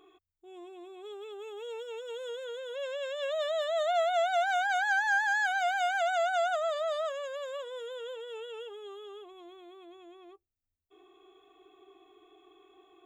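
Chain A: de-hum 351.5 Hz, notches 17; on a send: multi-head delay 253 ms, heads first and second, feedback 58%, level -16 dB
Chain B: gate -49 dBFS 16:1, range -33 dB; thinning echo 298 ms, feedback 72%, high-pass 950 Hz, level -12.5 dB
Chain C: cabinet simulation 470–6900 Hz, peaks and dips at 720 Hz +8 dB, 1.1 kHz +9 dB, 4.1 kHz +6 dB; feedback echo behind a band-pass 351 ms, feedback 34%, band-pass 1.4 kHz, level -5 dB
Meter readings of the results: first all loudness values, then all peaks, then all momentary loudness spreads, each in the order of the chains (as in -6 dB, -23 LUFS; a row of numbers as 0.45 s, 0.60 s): -30.5 LUFS, -30.5 LUFS, -24.0 LUFS; -18.0 dBFS, -19.0 dBFS, -12.5 dBFS; 20 LU, 18 LU, 20 LU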